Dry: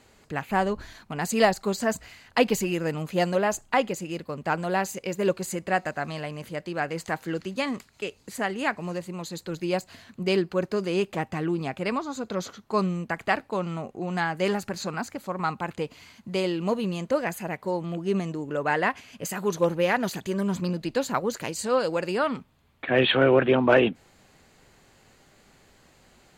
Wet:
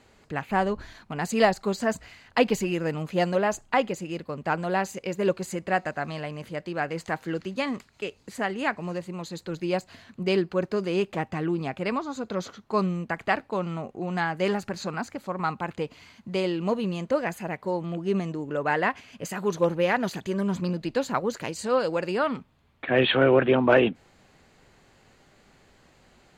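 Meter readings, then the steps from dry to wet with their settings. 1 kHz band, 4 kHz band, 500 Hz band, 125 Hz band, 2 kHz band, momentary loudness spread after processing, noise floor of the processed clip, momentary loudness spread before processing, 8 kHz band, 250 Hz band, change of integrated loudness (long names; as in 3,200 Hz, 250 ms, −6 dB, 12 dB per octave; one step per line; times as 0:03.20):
0.0 dB, −1.5 dB, 0.0 dB, 0.0 dB, −0.5 dB, 12 LU, −60 dBFS, 12 LU, −4.5 dB, 0.0 dB, 0.0 dB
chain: high-shelf EQ 7,900 Hz −10.5 dB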